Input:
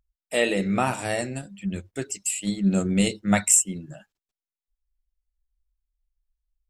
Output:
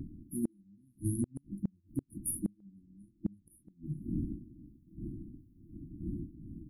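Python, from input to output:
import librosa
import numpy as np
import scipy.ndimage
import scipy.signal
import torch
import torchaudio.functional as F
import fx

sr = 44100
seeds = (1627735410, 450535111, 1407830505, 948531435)

y = fx.spec_quant(x, sr, step_db=15)
y = fx.dmg_wind(y, sr, seeds[0], corner_hz=470.0, level_db=-40.0)
y = fx.brickwall_bandstop(y, sr, low_hz=350.0, high_hz=9300.0)
y = fx.gate_flip(y, sr, shuts_db=-25.0, range_db=-38)
y = y * librosa.db_to_amplitude(4.0)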